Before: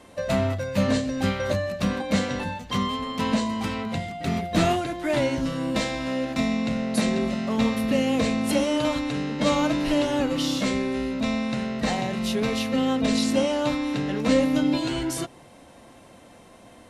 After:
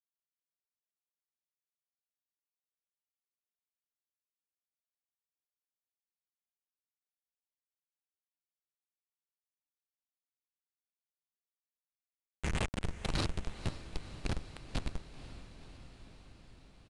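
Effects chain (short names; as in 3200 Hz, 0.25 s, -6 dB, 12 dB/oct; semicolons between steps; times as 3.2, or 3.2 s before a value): minimum comb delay 0.44 ms; weighting filter D; in parallel at -2 dB: compressor 6:1, threshold -31 dBFS, peak gain reduction 15 dB; on the sum: band-pass sweep 230 Hz -> 4400 Hz, 10.81–13.09; crossover distortion -36 dBFS; LFO high-pass saw down 9.9 Hz 950–3300 Hz; Schmitt trigger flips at -17 dBFS; companded quantiser 4-bit; on a send: diffused feedback echo 0.505 s, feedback 70%, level -13.5 dB; on the sum: downsampling 22050 Hz; gain +4 dB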